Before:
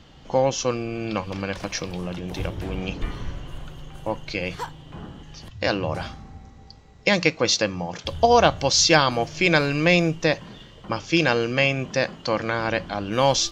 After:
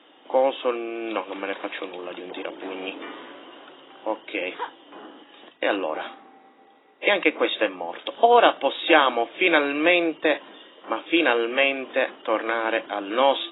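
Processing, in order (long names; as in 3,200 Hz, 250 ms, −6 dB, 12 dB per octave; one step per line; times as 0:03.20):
Chebyshev high-pass filter 290 Hz, order 4
level +1 dB
AAC 16 kbit/s 16,000 Hz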